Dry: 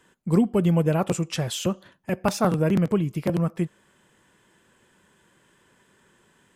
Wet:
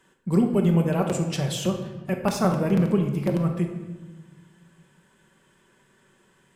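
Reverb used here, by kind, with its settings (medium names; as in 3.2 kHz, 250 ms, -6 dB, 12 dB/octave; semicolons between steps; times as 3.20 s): simulated room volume 860 m³, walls mixed, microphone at 1.1 m; trim -2.5 dB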